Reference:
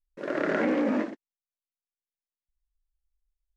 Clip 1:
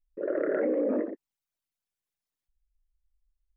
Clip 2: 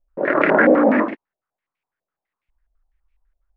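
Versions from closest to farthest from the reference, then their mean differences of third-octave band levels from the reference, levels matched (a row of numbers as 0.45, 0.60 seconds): 2, 1; 5.0, 9.0 decibels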